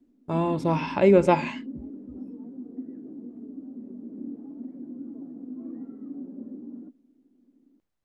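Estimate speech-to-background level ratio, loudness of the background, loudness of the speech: 17.0 dB, −39.5 LKFS, −22.5 LKFS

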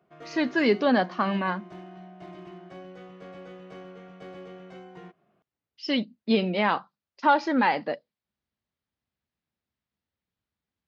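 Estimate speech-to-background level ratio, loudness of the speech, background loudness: 19.5 dB, −25.5 LKFS, −45.0 LKFS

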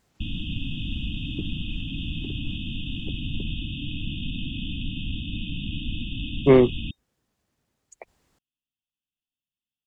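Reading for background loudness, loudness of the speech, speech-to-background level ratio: −32.5 LKFS, −19.0 LKFS, 13.5 dB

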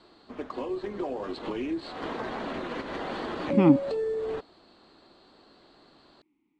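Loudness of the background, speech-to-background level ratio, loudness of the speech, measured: −33.5 LKFS, 10.0 dB, −23.5 LKFS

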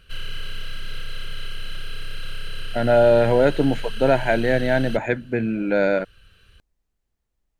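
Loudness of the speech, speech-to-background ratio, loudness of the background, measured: −20.0 LKFS, 15.5 dB, −35.5 LKFS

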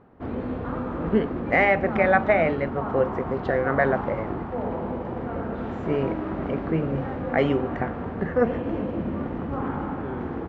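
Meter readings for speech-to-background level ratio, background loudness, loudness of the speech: 5.5 dB, −30.5 LKFS, −25.0 LKFS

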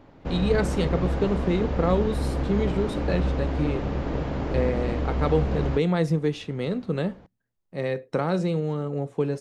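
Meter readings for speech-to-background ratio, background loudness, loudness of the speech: 1.5 dB, −28.5 LKFS, −27.0 LKFS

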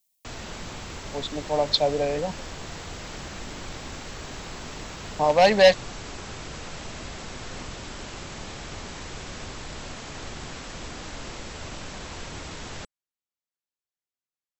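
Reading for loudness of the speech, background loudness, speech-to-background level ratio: −22.0 LKFS, −37.5 LKFS, 15.5 dB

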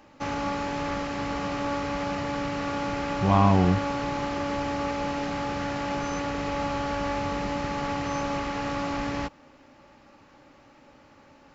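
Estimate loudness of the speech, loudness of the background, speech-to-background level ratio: −23.0 LKFS, −30.0 LKFS, 7.0 dB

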